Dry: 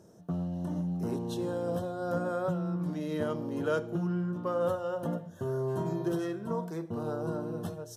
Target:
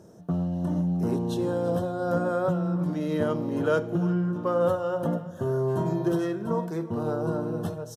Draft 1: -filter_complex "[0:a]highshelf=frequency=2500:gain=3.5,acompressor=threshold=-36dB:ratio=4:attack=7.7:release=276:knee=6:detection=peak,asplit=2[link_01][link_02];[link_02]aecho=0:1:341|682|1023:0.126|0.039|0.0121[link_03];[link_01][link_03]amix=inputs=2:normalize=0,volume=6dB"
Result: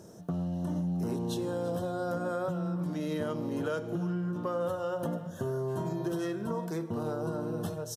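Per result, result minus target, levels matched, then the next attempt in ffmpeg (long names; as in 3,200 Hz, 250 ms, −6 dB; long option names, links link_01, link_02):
downward compressor: peak gain reduction +11 dB; 4,000 Hz band +5.0 dB
-filter_complex "[0:a]highshelf=frequency=2500:gain=3.5,asplit=2[link_01][link_02];[link_02]aecho=0:1:341|682|1023:0.126|0.039|0.0121[link_03];[link_01][link_03]amix=inputs=2:normalize=0,volume=6dB"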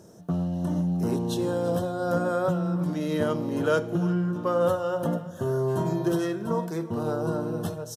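4,000 Hz band +4.5 dB
-filter_complex "[0:a]highshelf=frequency=2500:gain=-3.5,asplit=2[link_01][link_02];[link_02]aecho=0:1:341|682|1023:0.126|0.039|0.0121[link_03];[link_01][link_03]amix=inputs=2:normalize=0,volume=6dB"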